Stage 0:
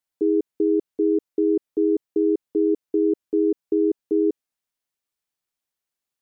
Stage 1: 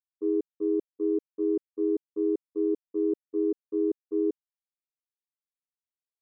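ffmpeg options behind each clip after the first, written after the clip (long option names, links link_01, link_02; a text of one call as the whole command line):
ffmpeg -i in.wav -af "agate=range=-33dB:threshold=-13dB:ratio=3:detection=peak" out.wav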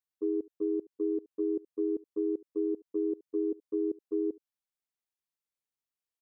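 ffmpeg -i in.wav -af "acompressor=threshold=-27dB:ratio=6,aecho=1:1:72:0.075" out.wav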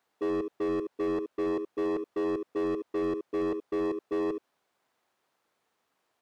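ffmpeg -i in.wav -filter_complex "[0:a]asplit=2[link_01][link_02];[link_02]acrusher=samples=15:mix=1:aa=0.000001,volume=-9.5dB[link_03];[link_01][link_03]amix=inputs=2:normalize=0,asplit=2[link_04][link_05];[link_05]highpass=frequency=720:poles=1,volume=35dB,asoftclip=type=tanh:threshold=-21.5dB[link_06];[link_04][link_06]amix=inputs=2:normalize=0,lowpass=frequency=1000:poles=1,volume=-6dB,volume=-2dB" out.wav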